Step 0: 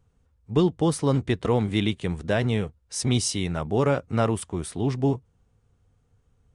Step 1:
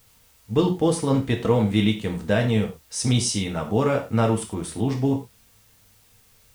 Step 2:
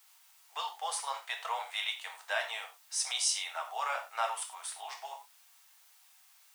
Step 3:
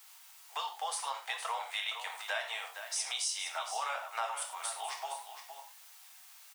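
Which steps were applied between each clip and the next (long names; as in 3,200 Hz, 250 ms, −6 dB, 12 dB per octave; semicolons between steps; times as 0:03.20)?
bit-depth reduction 10 bits, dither triangular; reverb whose tail is shaped and stops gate 130 ms falling, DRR 2 dB
Butterworth high-pass 710 Hz 48 dB per octave; level −4 dB
downward compressor 2.5 to 1, threshold −43 dBFS, peak gain reduction 11.5 dB; on a send: single-tap delay 465 ms −9.5 dB; on the sum: level +6 dB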